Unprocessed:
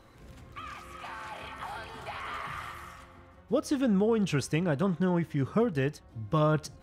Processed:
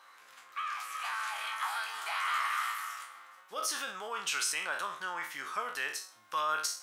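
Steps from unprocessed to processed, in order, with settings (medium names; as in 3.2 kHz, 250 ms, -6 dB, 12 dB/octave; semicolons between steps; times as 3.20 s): spectral sustain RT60 0.39 s; treble shelf 4.1 kHz +2 dB, from 0.80 s +12 dB; peak limiter -21 dBFS, peak gain reduction 7 dB; resonant high-pass 1.2 kHz, resonance Q 1.7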